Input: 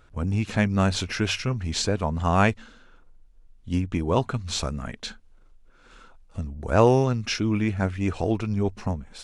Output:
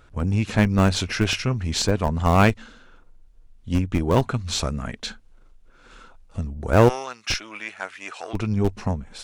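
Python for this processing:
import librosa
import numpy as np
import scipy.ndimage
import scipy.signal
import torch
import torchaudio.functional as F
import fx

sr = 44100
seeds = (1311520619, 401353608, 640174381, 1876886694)

p1 = fx.diode_clip(x, sr, knee_db=-14.5)
p2 = fx.highpass(p1, sr, hz=1000.0, slope=12, at=(6.88, 8.33), fade=0.02)
p3 = fx.schmitt(p2, sr, flips_db=-19.0)
p4 = p2 + (p3 * librosa.db_to_amplitude(-3.5))
y = p4 * librosa.db_to_amplitude(3.5)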